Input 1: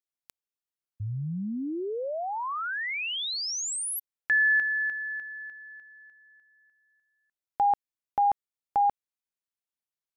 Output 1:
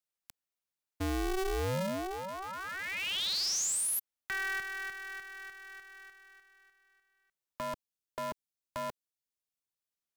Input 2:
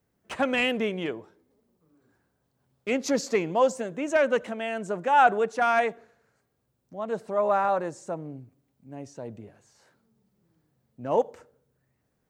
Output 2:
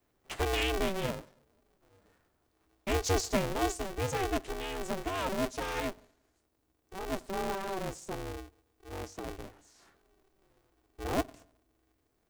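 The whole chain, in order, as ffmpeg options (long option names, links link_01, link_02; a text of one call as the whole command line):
ffmpeg -i in.wav -filter_complex "[0:a]acrossover=split=280|380|2900[link_01][link_02][link_03][link_04];[link_03]acompressor=threshold=-41dB:ratio=5:attack=4:release=983:knee=1:detection=rms[link_05];[link_01][link_02][link_05][link_04]amix=inputs=4:normalize=0,aeval=exprs='val(0)*sgn(sin(2*PI*190*n/s))':channel_layout=same" out.wav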